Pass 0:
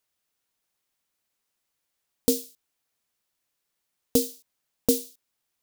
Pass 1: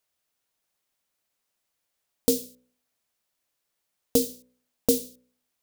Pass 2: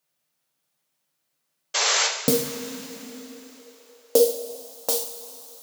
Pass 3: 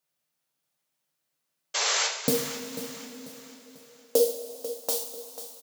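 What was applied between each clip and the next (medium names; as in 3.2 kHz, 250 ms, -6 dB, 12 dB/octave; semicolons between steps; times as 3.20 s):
peaking EQ 610 Hz +3.5 dB 0.52 oct; de-hum 62.42 Hz, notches 9
painted sound noise, 1.74–2.07 s, 380–7700 Hz -24 dBFS; two-slope reverb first 0.47 s, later 4.1 s, from -16 dB, DRR -0.5 dB; high-pass sweep 140 Hz -> 900 Hz, 2.48–5.07 s
feedback delay 492 ms, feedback 40%, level -13 dB; trim -4.5 dB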